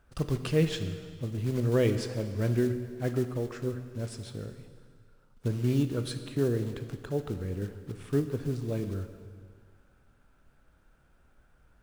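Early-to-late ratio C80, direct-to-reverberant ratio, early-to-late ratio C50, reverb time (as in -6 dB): 10.5 dB, 8.0 dB, 9.5 dB, 1.9 s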